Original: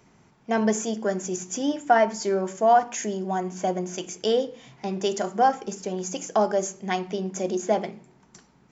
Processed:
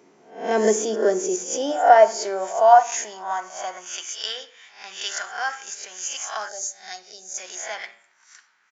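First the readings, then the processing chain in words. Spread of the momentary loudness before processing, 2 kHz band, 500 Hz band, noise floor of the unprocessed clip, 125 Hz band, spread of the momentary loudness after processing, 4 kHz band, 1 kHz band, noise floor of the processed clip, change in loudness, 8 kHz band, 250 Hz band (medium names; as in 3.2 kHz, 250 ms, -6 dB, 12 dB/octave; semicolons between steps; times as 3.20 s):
10 LU, +4.0 dB, +3.0 dB, -59 dBFS, under -10 dB, 19 LU, +5.0 dB, +4.0 dB, -60 dBFS, +3.5 dB, no reading, -5.5 dB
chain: reverse spectral sustain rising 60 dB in 0.46 s; high-pass sweep 360 Hz -> 1.6 kHz, 0.93–4.34 s; bass shelf 270 Hz +5 dB; de-hum 115.4 Hz, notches 32; resampled via 16 kHz; dynamic bell 5.9 kHz, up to +4 dB, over -44 dBFS, Q 0.82; time-frequency box 6.48–7.38 s, 850–3600 Hz -16 dB; trim -1 dB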